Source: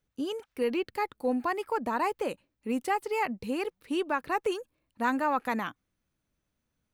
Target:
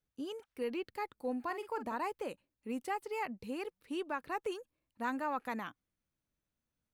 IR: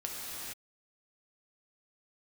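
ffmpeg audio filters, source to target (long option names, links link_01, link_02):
-filter_complex "[0:a]asettb=1/sr,asplit=3[link_01][link_02][link_03];[link_01]atrim=end=1.444[link_04];[link_02]atrim=start=1.44:end=1.95,asetpts=PTS-STARTPTS,afade=type=in:duration=0.004:curve=qsin,afade=type=out:start_time=0.506:duration=0.004:curve=qsin,asplit=2[link_05][link_06];[link_06]adelay=45,volume=-10.5dB[link_07];[link_05][link_07]amix=inputs=2:normalize=0,atrim=end_sample=22491[link_08];[link_03]atrim=start=1.946[link_09];[link_04][link_08]acrossfade=duration=0.004:curve1=hsin:curve2=qsin[link_10];[link_10][link_09]acrossfade=duration=0.004:curve1=qsin:curve2=hsin,volume=-8.5dB"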